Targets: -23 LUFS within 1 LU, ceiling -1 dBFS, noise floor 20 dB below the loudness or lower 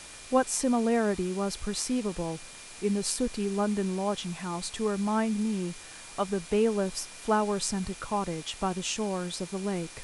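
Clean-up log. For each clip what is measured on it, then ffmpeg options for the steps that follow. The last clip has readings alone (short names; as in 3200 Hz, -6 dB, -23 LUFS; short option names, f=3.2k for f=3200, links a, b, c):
steady tone 2400 Hz; tone level -54 dBFS; noise floor -46 dBFS; noise floor target -50 dBFS; loudness -30.0 LUFS; peak -12.0 dBFS; loudness target -23.0 LUFS
-> -af "bandreject=f=2.4k:w=30"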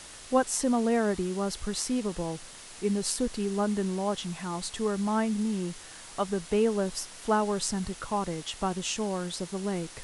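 steady tone none; noise floor -47 dBFS; noise floor target -50 dBFS
-> -af "afftdn=nr=6:nf=-47"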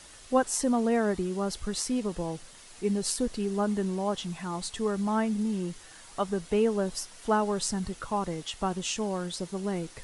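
noise floor -50 dBFS; loudness -30.0 LUFS; peak -12.0 dBFS; loudness target -23.0 LUFS
-> -af "volume=7dB"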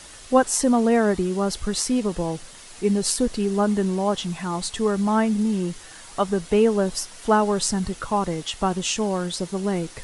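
loudness -23.0 LUFS; peak -5.0 dBFS; noise floor -43 dBFS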